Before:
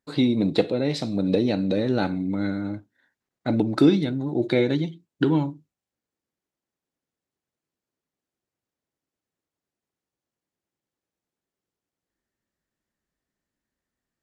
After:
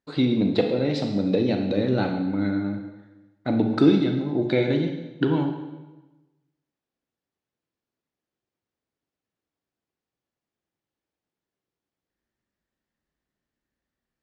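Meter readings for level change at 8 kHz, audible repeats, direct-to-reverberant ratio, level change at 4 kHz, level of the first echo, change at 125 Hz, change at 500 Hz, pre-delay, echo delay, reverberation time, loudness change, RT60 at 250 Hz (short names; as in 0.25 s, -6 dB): n/a, none, 4.5 dB, -1.0 dB, none, +0.5 dB, +0.5 dB, 28 ms, none, 1.1 s, +0.5 dB, 1.1 s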